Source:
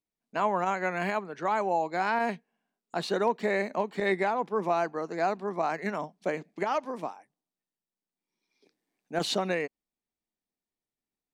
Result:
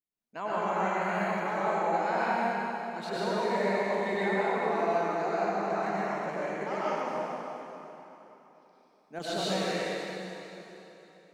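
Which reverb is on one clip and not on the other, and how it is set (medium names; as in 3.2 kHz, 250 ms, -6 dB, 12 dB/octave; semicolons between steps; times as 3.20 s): plate-style reverb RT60 3.4 s, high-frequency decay 0.9×, pre-delay 85 ms, DRR -9 dB; trim -9.5 dB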